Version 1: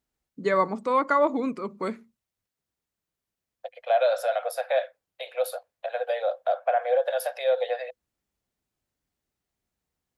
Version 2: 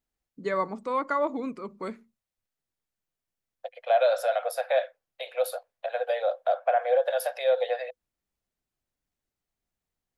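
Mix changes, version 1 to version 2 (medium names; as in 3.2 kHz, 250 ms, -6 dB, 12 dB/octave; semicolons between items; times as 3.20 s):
first voice -5.0 dB; master: remove high-pass 41 Hz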